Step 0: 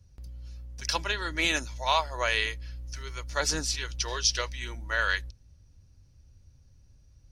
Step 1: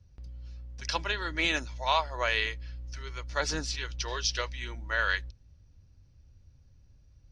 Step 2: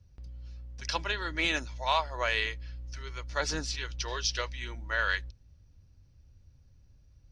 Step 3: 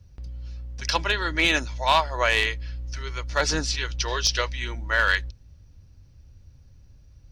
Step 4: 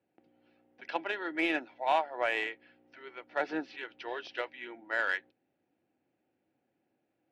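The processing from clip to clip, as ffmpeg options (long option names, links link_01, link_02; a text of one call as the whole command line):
ffmpeg -i in.wav -af "lowpass=4800,volume=-1dB" out.wav
ffmpeg -i in.wav -af "acontrast=89,volume=-8dB" out.wav
ffmpeg -i in.wav -af "aeval=exprs='clip(val(0),-1,0.0891)':channel_layout=same,volume=8dB" out.wav
ffmpeg -i in.wav -af "highpass=frequency=250:width=0.5412,highpass=frequency=250:width=1.3066,equalizer=frequency=330:width_type=q:width=4:gain=7,equalizer=frequency=750:width_type=q:width=4:gain=10,equalizer=frequency=1100:width_type=q:width=4:gain=-8,lowpass=frequency=2700:width=0.5412,lowpass=frequency=2700:width=1.3066,aeval=exprs='0.422*(cos(1*acos(clip(val(0)/0.422,-1,1)))-cos(1*PI/2))+0.00944*(cos(7*acos(clip(val(0)/0.422,-1,1)))-cos(7*PI/2))':channel_layout=same,volume=-8.5dB" out.wav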